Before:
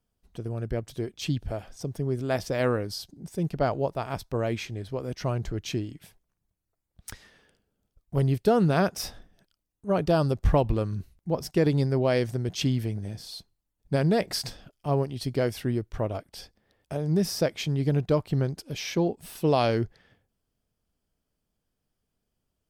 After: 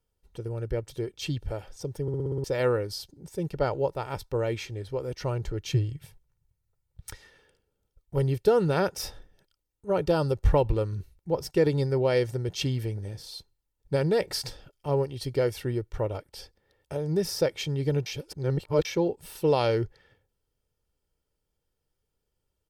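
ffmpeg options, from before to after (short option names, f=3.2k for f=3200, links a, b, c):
-filter_complex "[0:a]asettb=1/sr,asplit=3[a][b][c];[a]atrim=end=5.724[d];[b]atrim=start=5.72:end=7.1,asetpts=PTS-STARTPTS,afade=t=in:d=0.004:c=qsin,afade=t=out:st=1.376:d=0.004:c=qsin,lowshelf=f=180:t=q:w=3:g=6.5[e];[c]atrim=start=7.096[f];[d][e]acrossfade=d=0.004:c1=hsin:c2=qsin[g];[g][f]acrossfade=d=0.004:c1=qsin:c2=hsin,asplit=10[h][i][j][k][l][m][n][o][p][q];[h]atrim=end=2.082[r];[i]atrim=start=2.018:end=2.082[s];[j]atrim=start=2.018:end=2.082[t];[k]atrim=start=2.018:end=2.082[u];[l]atrim=start=2.018:end=2.082[v];[m]atrim=start=2.018:end=2.082[w];[n]atrim=start=2.018:end=2.082[x];[o]atrim=start=2.438:end=18.062[y];[p]atrim=start=18.058:end=18.852,asetpts=PTS-STARTPTS,areverse[z];[q]atrim=start=18.848[aa];[r][s]acrossfade=d=0.004:c1=hsin:c2=hsin[ab];[ab][t]acrossfade=d=0.004:c1=hsin:c2=hsin[ac];[ac][u]acrossfade=d=0.004:c1=hsin:c2=hsin[ad];[ad][v]acrossfade=d=0.004:c1=hsin:c2=hsin[ae];[ae][w]acrossfade=d=0.004:c1=hsin:c2=hsin[af];[af][x]acrossfade=d=0.004:c1=hsin:c2=hsin[ag];[ag][y]acrossfade=d=0.004:c1=hsin:c2=hsin[ah];[ah][z]acrossfade=d=0.004:c1=hsin:c2=hsin[ai];[ai][aa]acrossfade=d=0.004:c1=hsin:c2=hsin,equalizer=f=540:t=o:w=0.44:g=2,aecho=1:1:2.2:0.53,volume=-2dB"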